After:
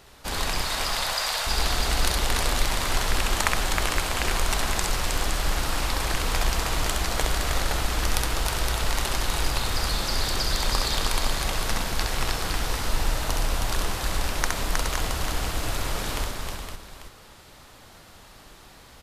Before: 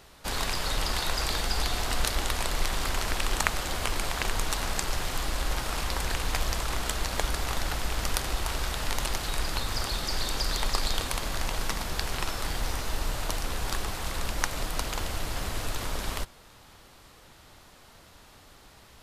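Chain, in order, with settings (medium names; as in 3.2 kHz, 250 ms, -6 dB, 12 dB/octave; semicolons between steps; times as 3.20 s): 0.61–1.47 s: steep high-pass 520 Hz; multi-tap echo 66/315/418/515/843 ms -3.5/-4/-10.5/-6.5/-13.5 dB; trim +1 dB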